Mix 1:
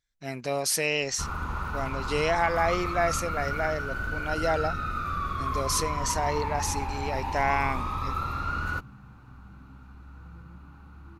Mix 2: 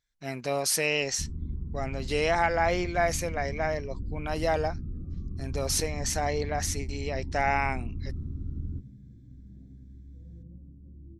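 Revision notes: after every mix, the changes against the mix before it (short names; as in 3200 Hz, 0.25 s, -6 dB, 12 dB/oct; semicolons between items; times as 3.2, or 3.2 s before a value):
first sound: add inverse Chebyshev low-pass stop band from 630 Hz, stop band 40 dB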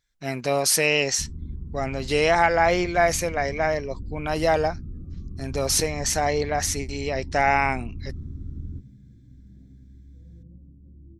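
speech +6.0 dB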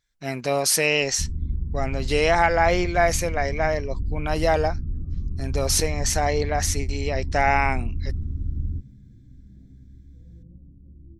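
first sound: add low shelf 110 Hz +10.5 dB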